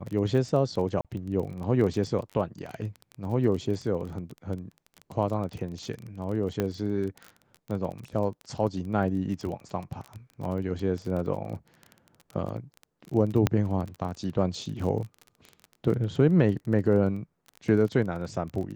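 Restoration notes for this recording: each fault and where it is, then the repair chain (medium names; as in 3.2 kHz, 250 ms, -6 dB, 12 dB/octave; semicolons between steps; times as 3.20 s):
crackle 23 per s -33 dBFS
1.01–1.05 s: dropout 37 ms
2.66 s: dropout 3.8 ms
6.60 s: pop -14 dBFS
13.47 s: pop -9 dBFS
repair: de-click; interpolate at 1.01 s, 37 ms; interpolate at 2.66 s, 3.8 ms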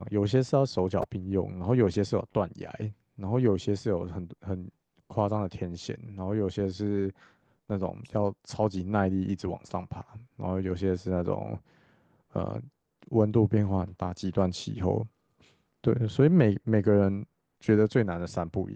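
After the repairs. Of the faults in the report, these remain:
nothing left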